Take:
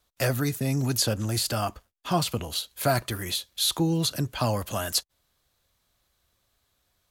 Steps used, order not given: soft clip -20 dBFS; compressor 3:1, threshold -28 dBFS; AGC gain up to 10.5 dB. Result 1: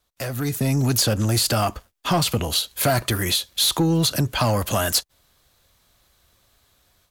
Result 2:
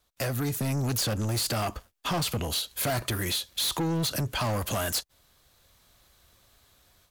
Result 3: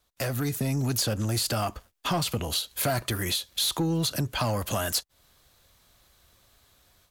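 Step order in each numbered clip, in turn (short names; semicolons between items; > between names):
soft clip > compressor > AGC; AGC > soft clip > compressor; soft clip > AGC > compressor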